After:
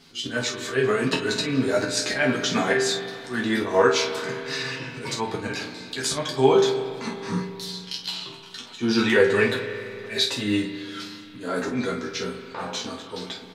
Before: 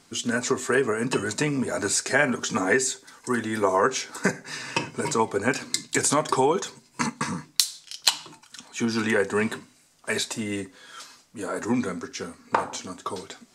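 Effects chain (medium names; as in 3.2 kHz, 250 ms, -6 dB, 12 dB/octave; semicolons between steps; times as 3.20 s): ten-band graphic EQ 1 kHz -4 dB, 4 kHz +8 dB, 8 kHz -11 dB; slow attack 146 ms; chorus voices 4, 0.19 Hz, delay 12 ms, depth 4.7 ms; early reflections 23 ms -6.5 dB, 49 ms -9.5 dB; spring tank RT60 2.8 s, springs 33/38 ms, chirp 25 ms, DRR 7.5 dB; trim +6 dB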